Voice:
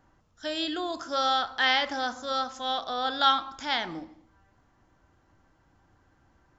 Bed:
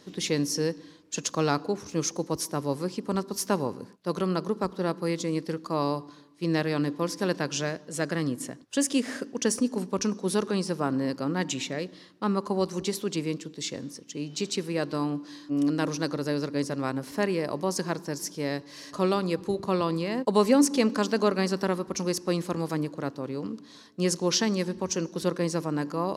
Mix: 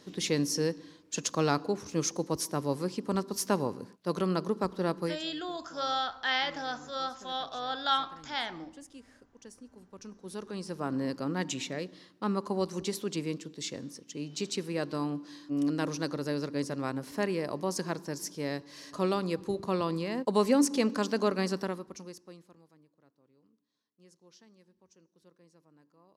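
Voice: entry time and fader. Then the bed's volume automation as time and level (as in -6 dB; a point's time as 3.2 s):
4.65 s, -5.5 dB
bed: 5.05 s -2 dB
5.27 s -25 dB
9.7 s -25 dB
10.99 s -4 dB
21.55 s -4 dB
22.76 s -34 dB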